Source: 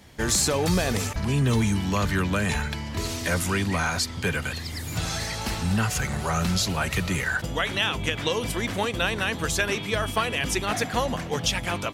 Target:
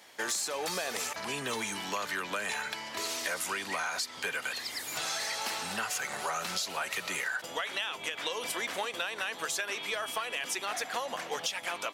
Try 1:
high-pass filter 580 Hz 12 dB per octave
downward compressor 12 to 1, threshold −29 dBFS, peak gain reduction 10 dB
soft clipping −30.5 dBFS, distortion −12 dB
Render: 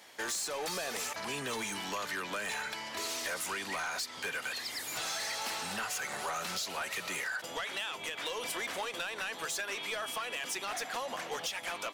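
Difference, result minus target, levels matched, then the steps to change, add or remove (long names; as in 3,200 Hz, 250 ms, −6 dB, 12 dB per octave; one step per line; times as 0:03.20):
soft clipping: distortion +12 dB
change: soft clipping −20.5 dBFS, distortion −24 dB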